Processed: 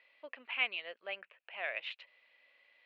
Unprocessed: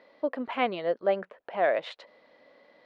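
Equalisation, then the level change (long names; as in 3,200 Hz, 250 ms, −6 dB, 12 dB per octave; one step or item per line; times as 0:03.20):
resonant band-pass 2,600 Hz, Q 5.6
+7.0 dB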